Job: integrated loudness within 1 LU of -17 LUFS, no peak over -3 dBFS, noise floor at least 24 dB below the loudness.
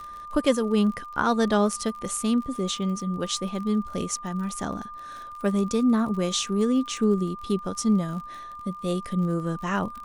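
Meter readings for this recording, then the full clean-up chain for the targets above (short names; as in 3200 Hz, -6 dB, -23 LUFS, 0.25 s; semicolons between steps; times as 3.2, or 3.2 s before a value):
ticks 41/s; steady tone 1200 Hz; tone level -37 dBFS; loudness -26.0 LUFS; peak -7.5 dBFS; loudness target -17.0 LUFS
-> de-click; notch 1200 Hz, Q 30; gain +9 dB; limiter -3 dBFS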